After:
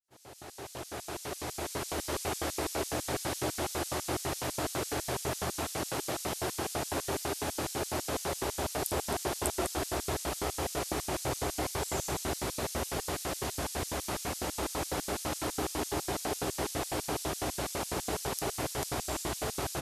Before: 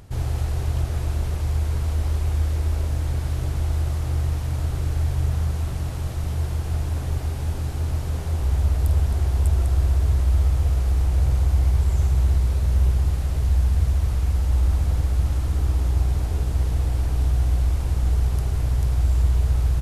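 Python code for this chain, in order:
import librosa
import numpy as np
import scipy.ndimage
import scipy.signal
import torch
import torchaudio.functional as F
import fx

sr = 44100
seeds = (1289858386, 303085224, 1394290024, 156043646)

y = fx.fade_in_head(x, sr, length_s=2.23)
y = fx.notch(y, sr, hz=480.0, q=12.0)
y = fx.filter_lfo_highpass(y, sr, shape='square', hz=6.0, low_hz=360.0, high_hz=5600.0, q=1.1)
y = y * 10.0 ** (6.5 / 20.0)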